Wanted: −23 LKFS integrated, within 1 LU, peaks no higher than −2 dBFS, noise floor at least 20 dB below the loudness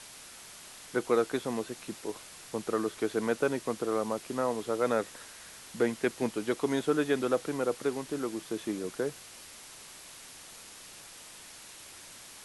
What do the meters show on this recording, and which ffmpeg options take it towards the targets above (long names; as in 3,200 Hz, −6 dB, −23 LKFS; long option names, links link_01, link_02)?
background noise floor −50 dBFS; target noise floor −52 dBFS; integrated loudness −32.0 LKFS; sample peak −13.0 dBFS; target loudness −23.0 LKFS
→ -af "afftdn=noise_reduction=6:noise_floor=-50"
-af "volume=9dB"